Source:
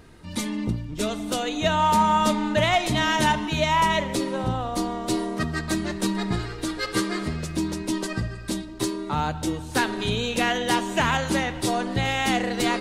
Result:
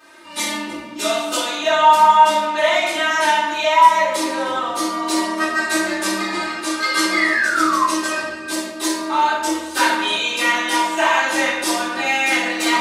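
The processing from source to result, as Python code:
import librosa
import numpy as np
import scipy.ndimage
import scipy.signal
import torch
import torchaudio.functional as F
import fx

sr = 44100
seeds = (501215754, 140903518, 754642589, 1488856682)

y = scipy.signal.sosfilt(scipy.signal.butter(2, 640.0, 'highpass', fs=sr, output='sos'), x)
y = y + 1.0 * np.pad(y, (int(3.3 * sr / 1000.0), 0))[:len(y)]
y = fx.rider(y, sr, range_db=3, speed_s=0.5)
y = fx.spec_paint(y, sr, seeds[0], shape='fall', start_s=7.11, length_s=0.73, low_hz=1000.0, high_hz=2200.0, level_db=-24.0)
y = fx.room_shoebox(y, sr, seeds[1], volume_m3=360.0, walls='mixed', distance_m=3.7)
y = F.gain(torch.from_numpy(y), -4.5).numpy()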